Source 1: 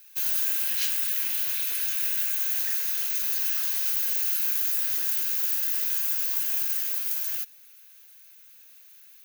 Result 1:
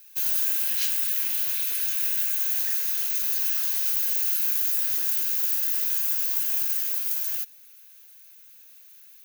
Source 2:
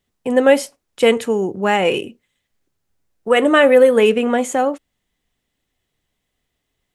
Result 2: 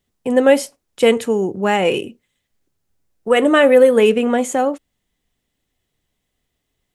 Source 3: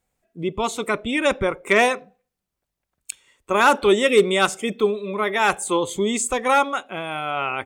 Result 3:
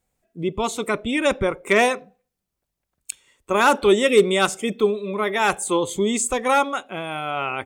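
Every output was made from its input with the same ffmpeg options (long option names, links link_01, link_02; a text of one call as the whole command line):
ffmpeg -i in.wav -af "equalizer=frequency=1600:width=0.41:gain=-3,volume=1.5dB" out.wav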